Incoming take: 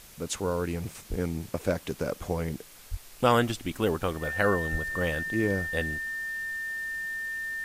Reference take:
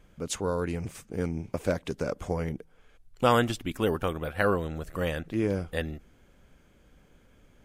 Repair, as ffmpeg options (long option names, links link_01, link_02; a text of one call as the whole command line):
ffmpeg -i in.wav -filter_complex "[0:a]bandreject=frequency=1800:width=30,asplit=3[link_01][link_02][link_03];[link_01]afade=type=out:start_time=1.09:duration=0.02[link_04];[link_02]highpass=frequency=140:width=0.5412,highpass=frequency=140:width=1.3066,afade=type=in:start_time=1.09:duration=0.02,afade=type=out:start_time=1.21:duration=0.02[link_05];[link_03]afade=type=in:start_time=1.21:duration=0.02[link_06];[link_04][link_05][link_06]amix=inputs=3:normalize=0,asplit=3[link_07][link_08][link_09];[link_07]afade=type=out:start_time=2.9:duration=0.02[link_10];[link_08]highpass=frequency=140:width=0.5412,highpass=frequency=140:width=1.3066,afade=type=in:start_time=2.9:duration=0.02,afade=type=out:start_time=3.02:duration=0.02[link_11];[link_09]afade=type=in:start_time=3.02:duration=0.02[link_12];[link_10][link_11][link_12]amix=inputs=3:normalize=0,asplit=3[link_13][link_14][link_15];[link_13]afade=type=out:start_time=4.71:duration=0.02[link_16];[link_14]highpass=frequency=140:width=0.5412,highpass=frequency=140:width=1.3066,afade=type=in:start_time=4.71:duration=0.02,afade=type=out:start_time=4.83:duration=0.02[link_17];[link_15]afade=type=in:start_time=4.83:duration=0.02[link_18];[link_16][link_17][link_18]amix=inputs=3:normalize=0,afwtdn=0.0032" out.wav